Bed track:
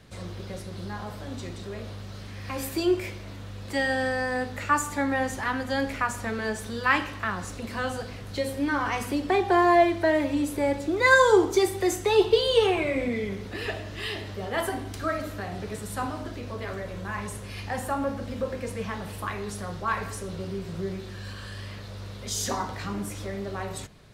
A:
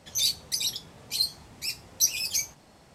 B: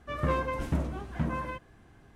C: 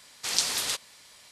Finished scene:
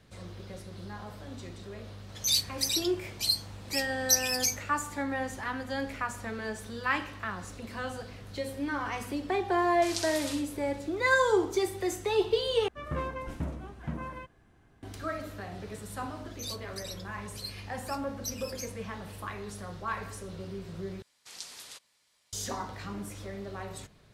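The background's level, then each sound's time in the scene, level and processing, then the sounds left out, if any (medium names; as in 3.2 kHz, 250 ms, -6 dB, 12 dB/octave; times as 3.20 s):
bed track -6.5 dB
2.09 s: add A -1 dB
9.58 s: add C -10.5 dB + feedback delay 64 ms, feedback 32%, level -5 dB
12.68 s: replace with B -5.5 dB
16.24 s: add A -14.5 dB
21.02 s: replace with C -17.5 dB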